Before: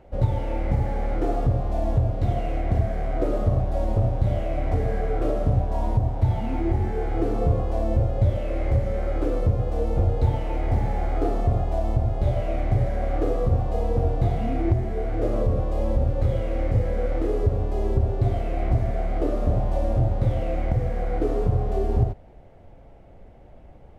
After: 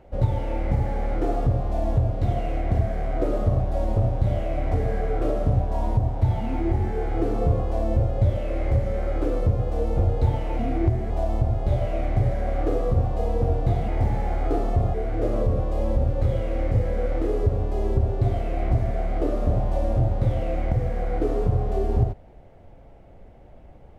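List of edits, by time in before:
0:10.59–0:11.65: swap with 0:14.43–0:14.94

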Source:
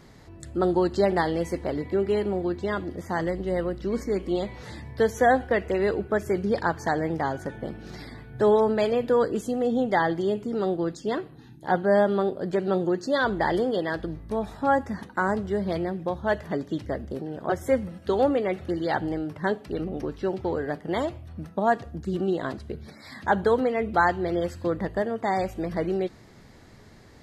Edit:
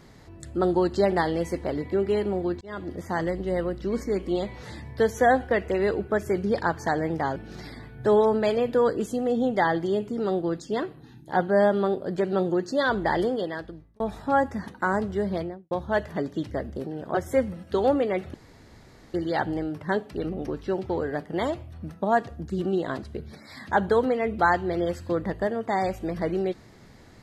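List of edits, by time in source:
0:02.61–0:02.91: fade in
0:07.36–0:07.71: remove
0:13.57–0:14.35: fade out
0:15.63–0:16.06: fade out and dull
0:18.69: splice in room tone 0.80 s

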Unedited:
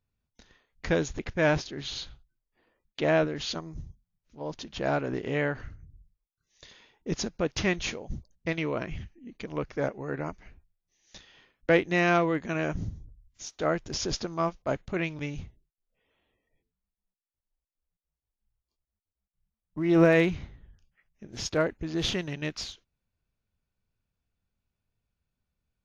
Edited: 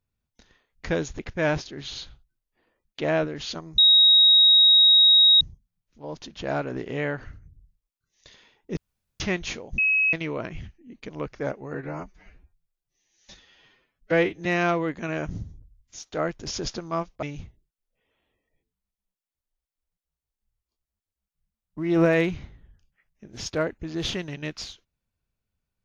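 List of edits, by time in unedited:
0:03.78: insert tone 3,790 Hz −12 dBFS 1.63 s
0:07.14–0:07.57: fill with room tone
0:08.15–0:08.50: beep over 2,560 Hz −18 dBFS
0:10.11–0:11.92: time-stretch 1.5×
0:14.69–0:15.22: remove

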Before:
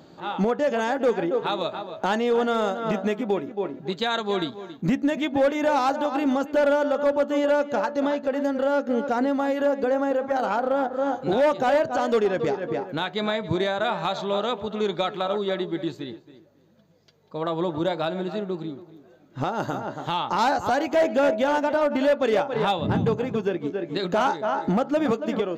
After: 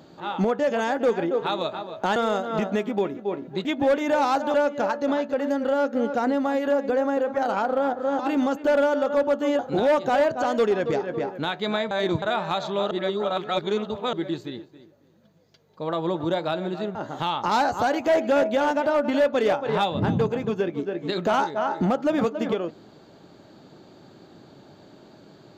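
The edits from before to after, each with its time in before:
0:02.16–0:02.48: remove
0:03.97–0:05.19: remove
0:06.08–0:07.48: move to 0:11.13
0:13.45–0:13.76: reverse
0:14.45–0:15.67: reverse
0:18.49–0:19.82: remove

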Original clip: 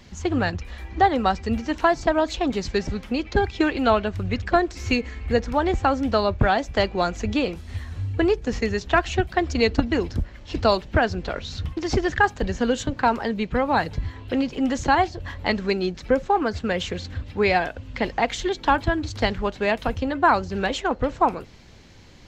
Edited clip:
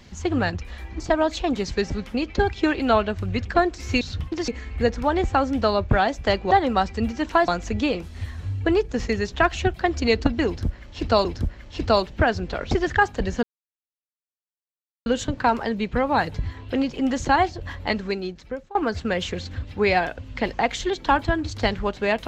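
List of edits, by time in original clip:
0:01.00–0:01.97: move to 0:07.01
0:10.00–0:10.78: repeat, 2 plays
0:11.46–0:11.93: move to 0:04.98
0:12.65: splice in silence 1.63 s
0:15.35–0:16.34: fade out, to −23 dB

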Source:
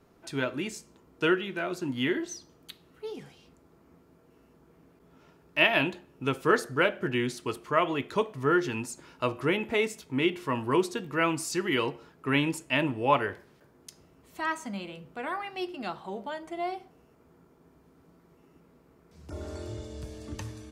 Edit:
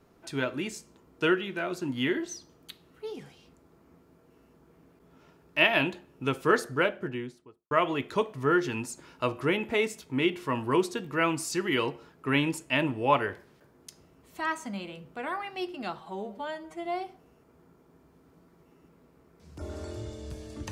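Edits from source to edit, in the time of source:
0:06.64–0:07.71: fade out and dull
0:16.00–0:16.57: time-stretch 1.5×

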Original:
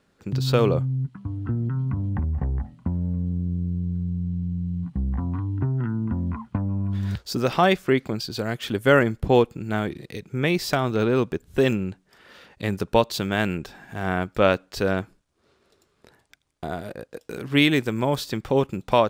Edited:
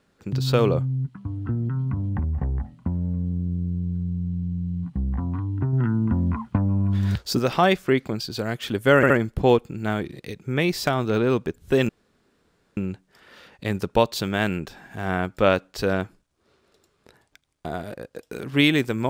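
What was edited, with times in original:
0:05.73–0:07.39: clip gain +4 dB
0:08.96: stutter 0.07 s, 3 plays
0:11.75: splice in room tone 0.88 s

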